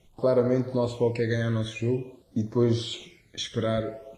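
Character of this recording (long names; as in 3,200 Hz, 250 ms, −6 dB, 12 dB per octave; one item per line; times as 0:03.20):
a quantiser's noise floor 12 bits, dither none
phaser sweep stages 12, 0.49 Hz, lowest notch 790–2,800 Hz
Ogg Vorbis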